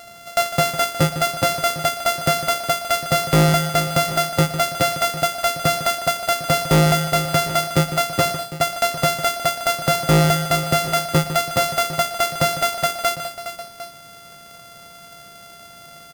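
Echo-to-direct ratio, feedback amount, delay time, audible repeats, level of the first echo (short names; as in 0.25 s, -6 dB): -7.5 dB, no steady repeat, 0.153 s, 3, -11.5 dB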